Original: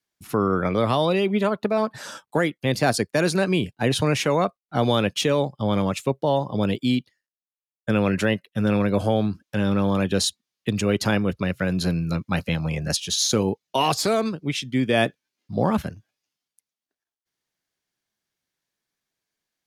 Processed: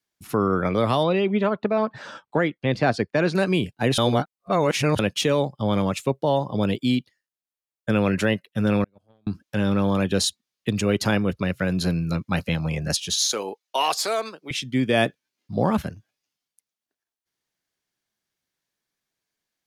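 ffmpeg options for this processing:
-filter_complex "[0:a]asettb=1/sr,asplit=3[a][b][c];[a]atrim=end=1.034[d];[b]atrim=start=1.03:end=3.35,asetpts=PTS-STARTPTS,afade=t=in:d=0.004:c=qsin,afade=t=out:st=2.316:d=0.004:c=qsin,lowpass=3.3k[e];[c]atrim=start=3.346[f];[d][e]acrossfade=d=0.004:c1=hsin:c2=qsin[g];[g][f]acrossfade=d=0.004:c1=qsin:c2=hsin,asettb=1/sr,asplit=3[h][i][j];[h]atrim=end=8.844[k];[i]atrim=start=8.84:end=9.27,asetpts=PTS-STARTPTS,afade=t=in:d=0.004:c=qsin,afade=t=out:st=0.426:d=0.004:c=qsin,agate=range=-43dB:threshold=-15dB:ratio=16:release=100:detection=peak[l];[j]atrim=start=9.266[m];[k][l]acrossfade=d=0.004:c1=hsin:c2=qsin[n];[n][m]acrossfade=d=0.004:c1=qsin:c2=hsin,asettb=1/sr,asplit=3[o][p][q];[o]atrim=end=13.264[r];[p]atrim=start=13.26:end=14.51,asetpts=PTS-STARTPTS,afade=t=in:d=0.004:c=qsin,afade=t=out:st=1.246:d=0.004:c=qsin,highpass=570[s];[q]atrim=start=14.506[t];[r][s]acrossfade=d=0.004:c1=hsin:c2=qsin[u];[u][t]acrossfade=d=0.004:c1=qsin:c2=hsin,asplit=3[v][w][x];[v]atrim=end=3.982[y];[w]atrim=start=3.978:end=4.992,asetpts=PTS-STARTPTS,areverse[z];[x]atrim=start=4.988[aa];[y][z]acrossfade=d=0.004:c1=hsin:c2=hsin[ab];[ab][aa]acrossfade=d=0.004:c1=hsin:c2=hsin"

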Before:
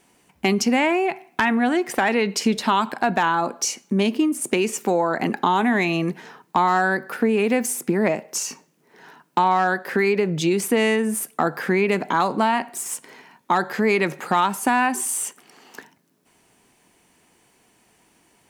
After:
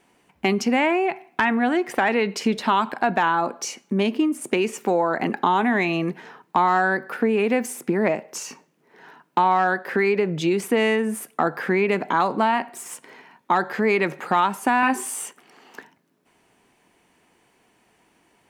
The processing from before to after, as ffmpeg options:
-filter_complex "[0:a]asettb=1/sr,asplit=3[a][b][c];[a]atrim=end=14.814[d];[b]atrim=start=14.81:end=15.26,asetpts=PTS-STARTPTS,afade=t=in:d=0.004:c=qsin,afade=t=out:st=0.446:d=0.004:c=qsin,asplit=2[e][f];[f]adelay=19,volume=-2dB[g];[e][g]amix=inputs=2:normalize=0,atrim=end_sample=19845[h];[c]atrim=start=15.256[i];[d][h]acrossfade=d=0.004:c1=hsin:c2=qsin[j];[j][i]acrossfade=d=0.004:c1=qsin:c2=hsin,bass=f=250:g=-3,treble=f=4k:g=-8"

